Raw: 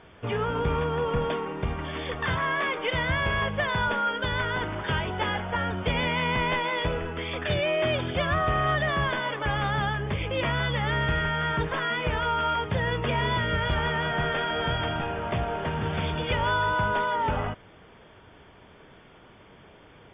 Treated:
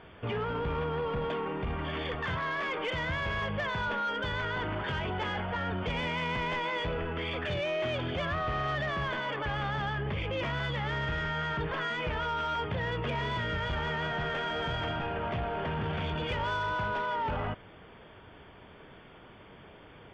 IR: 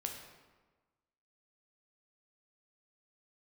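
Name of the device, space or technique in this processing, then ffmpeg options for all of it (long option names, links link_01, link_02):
soft clipper into limiter: -af "asoftclip=type=tanh:threshold=-20dB,alimiter=level_in=2.5dB:limit=-24dB:level=0:latency=1:release=16,volume=-2.5dB"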